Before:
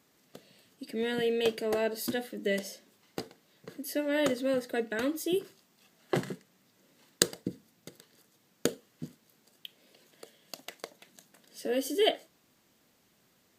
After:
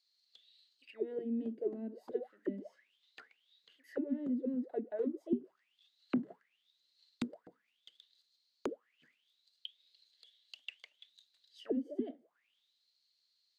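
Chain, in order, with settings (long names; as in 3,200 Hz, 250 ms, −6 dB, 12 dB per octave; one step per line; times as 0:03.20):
envelope filter 240–4,400 Hz, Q 14, down, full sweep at −26 dBFS
level +6.5 dB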